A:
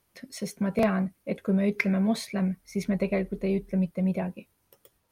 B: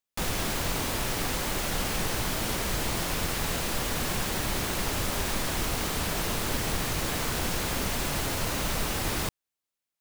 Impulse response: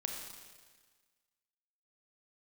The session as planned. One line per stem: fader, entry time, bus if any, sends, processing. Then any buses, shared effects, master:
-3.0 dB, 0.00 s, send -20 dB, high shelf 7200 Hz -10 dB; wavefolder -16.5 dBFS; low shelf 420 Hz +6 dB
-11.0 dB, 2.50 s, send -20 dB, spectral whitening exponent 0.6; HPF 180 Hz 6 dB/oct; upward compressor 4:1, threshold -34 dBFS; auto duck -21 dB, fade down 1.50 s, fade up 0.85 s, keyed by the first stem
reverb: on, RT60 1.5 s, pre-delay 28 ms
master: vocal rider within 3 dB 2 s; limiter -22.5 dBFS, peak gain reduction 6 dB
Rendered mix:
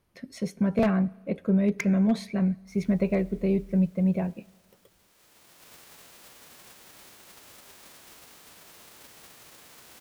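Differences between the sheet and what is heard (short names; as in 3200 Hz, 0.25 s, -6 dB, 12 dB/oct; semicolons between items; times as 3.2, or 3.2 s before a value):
stem B -11.0 dB -> -22.5 dB; master: missing limiter -22.5 dBFS, peak gain reduction 6 dB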